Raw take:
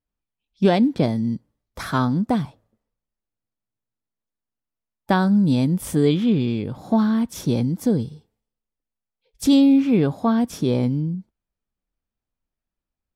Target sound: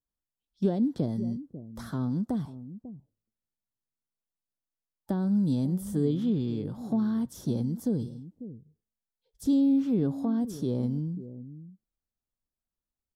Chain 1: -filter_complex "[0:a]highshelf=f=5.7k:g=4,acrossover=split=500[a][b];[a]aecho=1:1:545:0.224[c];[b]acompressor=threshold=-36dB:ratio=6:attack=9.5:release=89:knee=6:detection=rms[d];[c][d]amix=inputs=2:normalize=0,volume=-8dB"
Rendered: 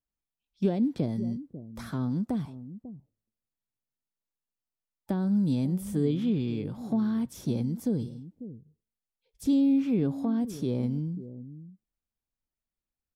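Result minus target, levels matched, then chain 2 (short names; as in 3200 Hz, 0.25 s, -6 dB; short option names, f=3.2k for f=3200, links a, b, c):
2000 Hz band +3.5 dB
-filter_complex "[0:a]highshelf=f=5.7k:g=4,acrossover=split=500[a][b];[a]aecho=1:1:545:0.224[c];[b]acompressor=threshold=-36dB:ratio=6:attack=9.5:release=89:knee=6:detection=rms,equalizer=f=2.4k:t=o:w=0.46:g=-12.5[d];[c][d]amix=inputs=2:normalize=0,volume=-8dB"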